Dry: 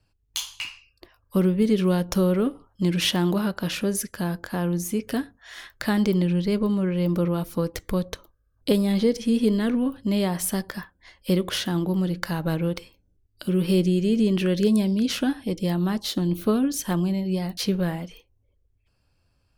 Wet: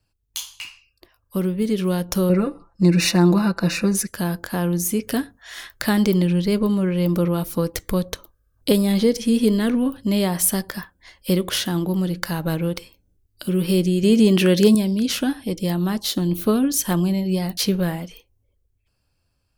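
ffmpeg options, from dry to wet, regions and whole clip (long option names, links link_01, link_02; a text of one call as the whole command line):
ffmpeg -i in.wav -filter_complex "[0:a]asettb=1/sr,asplit=3[link_01][link_02][link_03];[link_01]atrim=end=2.294[link_04];[link_02]atrim=start=2.29:end=4.07,asetpts=PTS-STARTPTS,afade=type=in:duration=0.004:curve=qsin,afade=type=out:start_time=1.776:duration=0.004:curve=qsin,asuperstop=centerf=3200:order=8:qfactor=4.1,adynamicsmooth=sensitivity=3.5:basefreq=6200,aecho=1:1:5.9:0.8,atrim=end_sample=78498[link_05];[link_03]atrim=start=4.066[link_06];[link_04][link_05]acrossfade=duration=0.004:curve1=hsin:curve2=qsin[link_07];[link_07][link_06]acrossfade=duration=0.004:curve1=qsin:curve2=hsin,asettb=1/sr,asplit=3[link_08][link_09][link_10];[link_08]atrim=end=14.034[link_11];[link_09]atrim=start=14.03:end=14.75,asetpts=PTS-STARTPTS,afade=type=in:duration=0.004:curve=qsin,afade=type=out:start_time=0.716:duration=0.004:curve=qsin,highpass=frequency=150:poles=1,acontrast=61[link_12];[link_10]atrim=start=14.746[link_13];[link_11][link_12]acrossfade=duration=0.004:curve1=hsin:curve2=qsin[link_14];[link_14][link_13]acrossfade=duration=0.004:curve1=qsin:curve2=hsin,dynaudnorm=framelen=380:gausssize=11:maxgain=11.5dB,highshelf=frequency=6500:gain=8,volume=-3.5dB" out.wav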